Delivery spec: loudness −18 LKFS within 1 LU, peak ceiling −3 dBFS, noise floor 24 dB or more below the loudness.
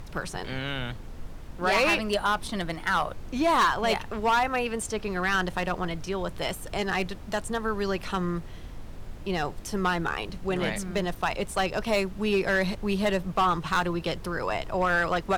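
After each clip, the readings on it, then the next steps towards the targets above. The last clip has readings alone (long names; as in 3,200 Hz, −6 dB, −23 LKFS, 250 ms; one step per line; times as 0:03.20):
share of clipped samples 1.1%; peaks flattened at −17.5 dBFS; background noise floor −41 dBFS; target noise floor −52 dBFS; integrated loudness −27.5 LKFS; sample peak −17.5 dBFS; target loudness −18.0 LKFS
→ clipped peaks rebuilt −17.5 dBFS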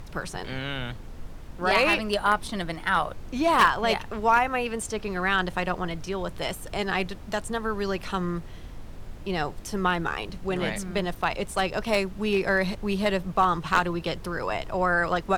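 share of clipped samples 0.0%; background noise floor −41 dBFS; target noise floor −51 dBFS
→ noise reduction from a noise print 10 dB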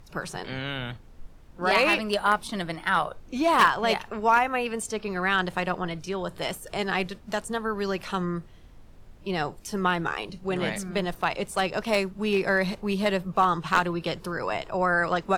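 background noise floor −49 dBFS; target noise floor −51 dBFS
→ noise reduction from a noise print 6 dB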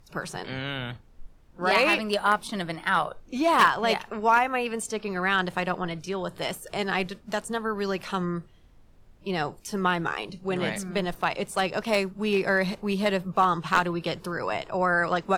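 background noise floor −54 dBFS; integrated loudness −26.5 LKFS; sample peak −8.0 dBFS; target loudness −18.0 LKFS
→ level +8.5 dB
brickwall limiter −3 dBFS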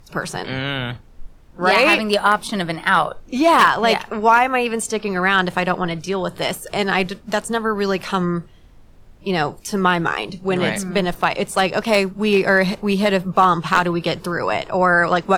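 integrated loudness −18.5 LKFS; sample peak −3.0 dBFS; background noise floor −46 dBFS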